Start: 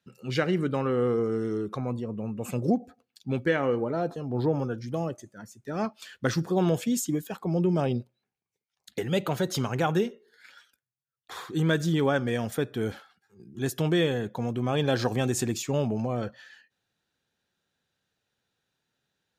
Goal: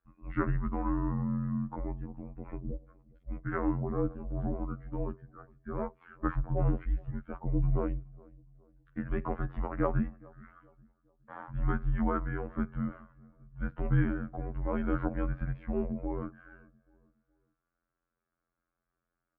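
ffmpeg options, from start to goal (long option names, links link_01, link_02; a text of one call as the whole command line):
ffmpeg -i in.wav -filter_complex "[0:a]asettb=1/sr,asplit=3[link_01][link_02][link_03];[link_01]atrim=end=2.044[link_04];[link_02]atrim=start=2.04:end=3.53,asetpts=PTS-STARTPTS,afade=type=in:duration=0.004:curve=qsin,afade=type=out:start_time=1.486:duration=0.004:curve=qsin,acompressor=threshold=-29dB:ratio=10[link_05];[link_03]atrim=start=3.526[link_06];[link_04][link_05]acrossfade=duration=0.004:curve1=hsin:curve2=qsin[link_07];[link_07][link_06]acrossfade=duration=0.004:curve1=qsin:curve2=hsin,afftfilt=real='hypot(re,im)*cos(PI*b)':imag='0':win_size=2048:overlap=0.75,highpass=frequency=150:width_type=q:width=0.5412,highpass=frequency=150:width_type=q:width=1.307,lowpass=frequency=2000:width_type=q:width=0.5176,lowpass=frequency=2000:width_type=q:width=0.7071,lowpass=frequency=2000:width_type=q:width=1.932,afreqshift=-210,asplit=2[link_08][link_09];[link_09]adelay=416,lowpass=frequency=1300:poles=1,volume=-23.5dB,asplit=2[link_10][link_11];[link_11]adelay=416,lowpass=frequency=1300:poles=1,volume=0.4,asplit=2[link_12][link_13];[link_13]adelay=416,lowpass=frequency=1300:poles=1,volume=0.4[link_14];[link_08][link_10][link_12][link_14]amix=inputs=4:normalize=0" out.wav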